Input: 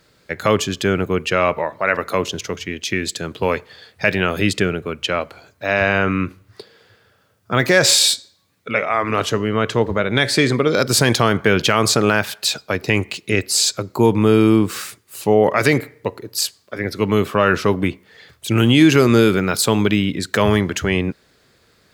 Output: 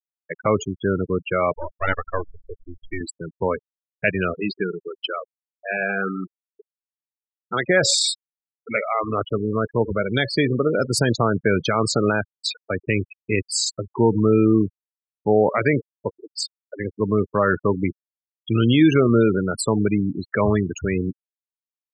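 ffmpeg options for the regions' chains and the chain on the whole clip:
-filter_complex "[0:a]asettb=1/sr,asplit=3[a][b][c];[a]atrim=end=1.554[d];[b]atrim=start=1.55:end=3.01,asetpts=PTS-STARTPTS,afade=t=in:d=0.004:c=qsin,afade=t=out:st=1.456:d=0.004:c=qsin,highpass=65,equalizer=f=1.3k:w=2.1:g=7,aeval=exprs='max(val(0),0)':c=same[e];[c]atrim=start=3.006[f];[d][e]acrossfade=d=0.004:c1=hsin:c2=qsin[g];[g][f]acrossfade=d=0.004:c1=qsin:c2=hsin,asettb=1/sr,asplit=3[h][i][j];[h]atrim=end=4.344[k];[i]atrim=start=4.34:end=7.69,asetpts=PTS-STARTPTS,afade=t=in:d=0.004:c=qsin,afade=t=out:st=3.346:d=0.004:c=qsin,highpass=f=140:w=0.5412,highpass=f=140:w=1.3066,equalizer=f=150:t=q:w=4:g=-10,equalizer=f=260:t=q:w=4:g=-7,equalizer=f=590:t=q:w=4:g=-7,equalizer=f=2.1k:t=q:w=4:g=-3,equalizer=f=4.7k:t=q:w=4:g=6,lowpass=f=5.2k:w=0.5412,lowpass=f=5.2k:w=1.3066,aecho=1:1:87|174|261|348|435|522:0.141|0.0848|0.0509|0.0305|0.0183|0.011,atrim=end_sample=147735[l];[j]atrim=start=7.686[m];[k][l]acrossfade=d=0.004:c1=hsin:c2=qsin[n];[n][m]acrossfade=d=0.004:c1=qsin:c2=hsin,adynamicequalizer=threshold=0.0224:dfrequency=2900:dqfactor=0.99:tfrequency=2900:tqfactor=0.99:attack=5:release=100:ratio=0.375:range=2.5:mode=cutabove:tftype=bell,afftfilt=real='re*gte(hypot(re,im),0.2)':imag='im*gte(hypot(re,im),0.2)':win_size=1024:overlap=0.75,volume=-3dB"

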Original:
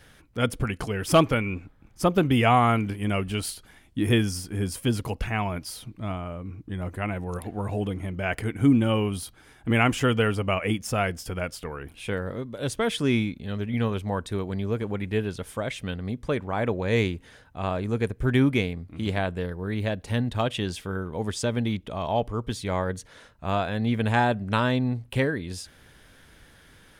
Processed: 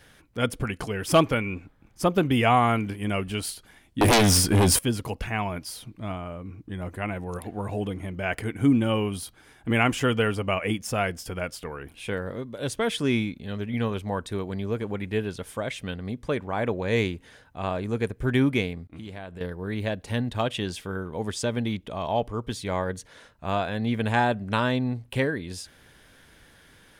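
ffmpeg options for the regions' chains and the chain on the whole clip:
-filter_complex "[0:a]asettb=1/sr,asplit=3[a][b][c];[a]atrim=end=4.014[d];[b]atrim=start=4.01:end=4.79,asetpts=PTS-STARTPTS,afade=t=in:d=0.004:c=qsin,afade=t=out:st=0.776:d=0.004:c=qsin,acompressor=threshold=-26dB:ratio=1.5:attack=3.2:release=140:knee=1:detection=peak,aeval=exprs='0.211*sin(PI/2*4.47*val(0)/0.211)':c=same[e];[c]atrim=start=4.786[f];[d][e]acrossfade=d=0.004:c1=hsin:c2=qsin[g];[g][f]acrossfade=d=0.004:c1=qsin:c2=hsin,asettb=1/sr,asplit=3[h][i][j];[h]atrim=end=18.874[k];[i]atrim=start=18.87:end=19.41,asetpts=PTS-STARTPTS,afade=t=in:d=0.004:c=qsin,afade=t=out:st=0.536:d=0.004:c=qsin,agate=range=-33dB:threshold=-44dB:ratio=3:release=100:detection=peak,acompressor=threshold=-35dB:ratio=4:attack=3.2:release=140:knee=1:detection=peak[l];[j]atrim=start=19.406[m];[k][l]acrossfade=d=0.004:c1=hsin:c2=qsin[n];[n][m]acrossfade=d=0.004:c1=qsin:c2=hsin,lowshelf=f=130:g=-4.5,bandreject=f=1.3k:w=30"

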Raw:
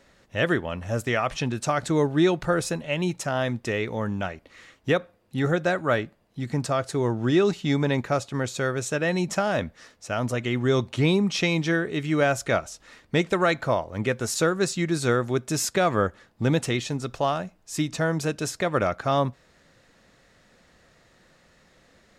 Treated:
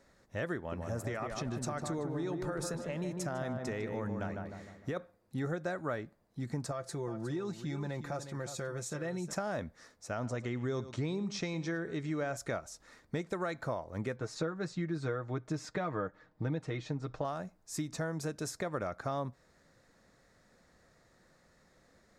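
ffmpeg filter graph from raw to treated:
-filter_complex "[0:a]asettb=1/sr,asplit=3[a][b][c];[a]atrim=end=0.574[d];[b]atrim=start=0.57:end=4.97,asetpts=PTS-STARTPTS,afade=t=in:d=0.004:c=qsin,afade=t=out:st=4.396:d=0.004:c=qsin,acompressor=threshold=-23dB:ratio=6:attack=3.2:release=140:knee=1:detection=peak,asplit=2[e][f];[f]adelay=152,lowpass=f=1.5k:p=1,volume=-4dB,asplit=2[g][h];[h]adelay=152,lowpass=f=1.5k:p=1,volume=0.51,asplit=2[i][j];[j]adelay=152,lowpass=f=1.5k:p=1,volume=0.51,asplit=2[k][l];[l]adelay=152,lowpass=f=1.5k:p=1,volume=0.51,asplit=2[m][n];[n]adelay=152,lowpass=f=1.5k:p=1,volume=0.51,asplit=2[o][p];[p]adelay=152,lowpass=f=1.5k:p=1,volume=0.51,asplit=2[q][r];[r]adelay=152,lowpass=f=1.5k:p=1,volume=0.51[s];[e][g][i][k][m][o][q][s]amix=inputs=8:normalize=0,atrim=end_sample=194040[t];[c]atrim=start=4.966[u];[d][t]acrossfade=d=0.004:c1=hsin:c2=qsin[v];[v][u]acrossfade=d=0.004:c1=qsin:c2=hsin,asettb=1/sr,asplit=3[w][x][y];[w]atrim=end=6.714[z];[x]atrim=start=6.71:end=9.33,asetpts=PTS-STARTPTS,afade=t=in:d=0.004:c=qsin,afade=t=out:st=2.616:d=0.004:c=qsin,aecho=1:1:5.8:0.56,atrim=end_sample=115542,acompressor=threshold=-32dB:ratio=2:attack=3.2:release=140:knee=1:detection=peak,aecho=1:1:361:0.282,atrim=end_sample=115542[aa];[y]atrim=start=9.326[ab];[z][aa]acrossfade=d=0.004:c1=hsin:c2=qsin[ac];[ac][ab]acrossfade=d=0.004:c1=qsin:c2=hsin,asettb=1/sr,asplit=3[ad][ae][af];[ad]atrim=end=10.104[ag];[ae]atrim=start=10.1:end=12.37,asetpts=PTS-STARTPTS,afade=t=in:d=0.004:c=qsin,afade=t=out:st=2.266:d=0.004:c=qsin,lowpass=f=7.9k:w=0.5412,lowpass=f=7.9k:w=1.3066,aecho=1:1:108:0.15,atrim=end_sample=100107[ah];[af]atrim=start=12.366[ai];[ag][ah]acrossfade=d=0.004:c1=hsin:c2=qsin[aj];[aj][ai]acrossfade=d=0.004:c1=qsin:c2=hsin,asettb=1/sr,asplit=3[ak][al][am];[ak]atrim=end=14.164[an];[al]atrim=start=14.16:end=17.25,asetpts=PTS-STARTPTS,afade=t=in:d=0.004:c=qsin,afade=t=out:st=3.086:d=0.004:c=qsin,lowpass=3.4k,aecho=1:1:6.5:0.62,atrim=end_sample=136269[ao];[am]atrim=start=17.246[ap];[an][ao]acrossfade=d=0.004:c1=hsin:c2=qsin[aq];[aq][ap]acrossfade=d=0.004:c1=qsin:c2=hsin,acompressor=threshold=-26dB:ratio=4,equalizer=f=2.9k:t=o:w=0.61:g=-10.5,volume=-6.5dB"

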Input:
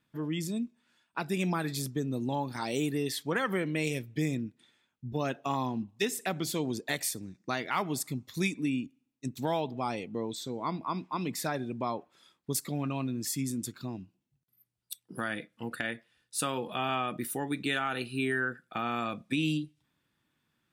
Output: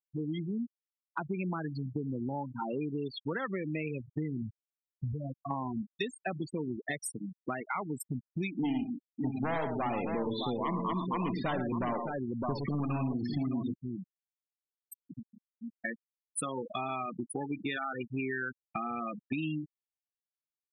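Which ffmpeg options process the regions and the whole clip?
-filter_complex "[0:a]asettb=1/sr,asplit=3[a][b][c];[a]atrim=end=4.424[d];[b]atrim=start=4.42:end=5.51,asetpts=PTS-STARTPTS,afade=t=in:d=0.004:c=qsin,afade=t=out:st=1.086:d=0.004:c=qsin,acompressor=threshold=-40dB:ratio=3:attack=3.2:release=140:knee=1:detection=peak,equalizer=f=96:w=0.79:g=11.5[e];[c]atrim=start=5.506[f];[d][e]acrossfade=d=0.004:c1=hsin:c2=qsin[g];[g][f]acrossfade=d=0.004:c1=qsin:c2=hsin,asettb=1/sr,asplit=3[h][i][j];[h]atrim=end=8.544[k];[i]atrim=start=8.54:end=13.74,asetpts=PTS-STARTPTS,afade=t=in:d=0.004:c=qsin,afade=t=out:st=5.196:d=0.004:c=qsin,lowpass=f=4k:w=0.5412,lowpass=f=4k:w=1.3066,aeval=exprs='0.119*sin(PI/2*2.51*val(0)/0.119)':c=same,aecho=1:1:61|111|132|612:0.335|0.447|0.133|0.422,atrim=end_sample=229320[l];[j]atrim=start=13.736[m];[k][l]acrossfade=d=0.004:c1=hsin:c2=qsin[n];[n][m]acrossfade=d=0.004:c1=qsin:c2=hsin,asettb=1/sr,asplit=3[o][p][q];[o]atrim=end=15.164[r];[p]atrim=start=15.16:end=15.85,asetpts=PTS-STARTPTS,afade=t=in:d=0.004:c=qsin,afade=t=out:st=0.686:d=0.004:c=qsin,lowpass=f=1k:p=1,acompressor=threshold=-45dB:ratio=2:attack=3.2:release=140:knee=1:detection=peak,lowshelf=f=110:g=3.5[s];[q]atrim=start=15.846[t];[r][s]acrossfade=d=0.004:c1=hsin:c2=qsin[u];[u][t]acrossfade=d=0.004:c1=qsin:c2=hsin,afftfilt=real='re*gte(hypot(re,im),0.0562)':imag='im*gte(hypot(re,im),0.0562)':win_size=1024:overlap=0.75,acompressor=threshold=-40dB:ratio=4,volume=6.5dB"

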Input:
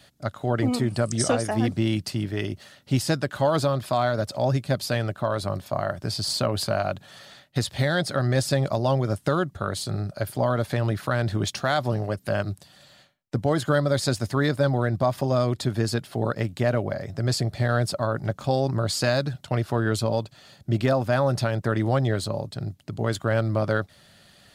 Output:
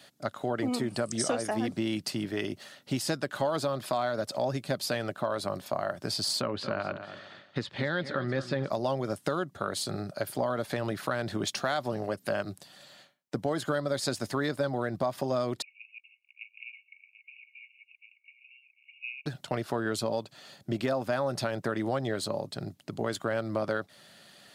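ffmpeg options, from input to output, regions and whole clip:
-filter_complex "[0:a]asettb=1/sr,asplit=3[a][b][c];[a]atrim=end=6.414[d];[b]atrim=start=6.41:end=8.7,asetpts=PTS-STARTPTS,afade=t=in:d=0.004:c=qsin,afade=t=out:st=2.286:d=0.004:c=qsin,lowpass=2.9k,equalizer=f=690:t=o:w=0.37:g=-9.5,aecho=1:1:228|456|684:0.224|0.0672|0.0201,atrim=end_sample=100989[e];[c]atrim=start=8.696[f];[d][e]acrossfade=d=0.004:c1=hsin:c2=qsin[g];[g][f]acrossfade=d=0.004:c1=qsin:c2=hsin,asettb=1/sr,asplit=3[h][i][j];[h]atrim=end=15.624[k];[i]atrim=start=15.62:end=19.26,asetpts=PTS-STARTPTS,afade=t=in:d=0.004:c=qsin,afade=t=out:st=3.636:d=0.004:c=qsin,aeval=exprs='clip(val(0),-1,0.0944)':c=same,asuperpass=centerf=2500:order=20:qfactor=3.7,aecho=1:1:739:0.224,atrim=end_sample=160524[l];[j]atrim=start=19.256[m];[k][l]acrossfade=d=0.004:c1=hsin:c2=qsin[n];[n][m]acrossfade=d=0.004:c1=qsin:c2=hsin,highpass=200,acompressor=threshold=-28dB:ratio=2.5"

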